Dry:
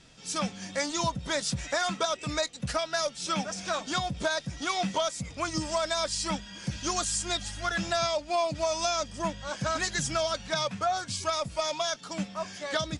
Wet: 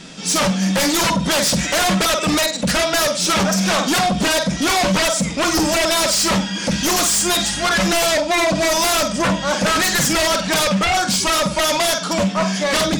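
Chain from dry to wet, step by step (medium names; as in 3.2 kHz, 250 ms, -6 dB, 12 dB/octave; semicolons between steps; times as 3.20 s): resonant low shelf 140 Hz -8 dB, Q 3; flutter echo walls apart 8.1 m, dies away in 0.32 s; sine folder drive 14 dB, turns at -13.5 dBFS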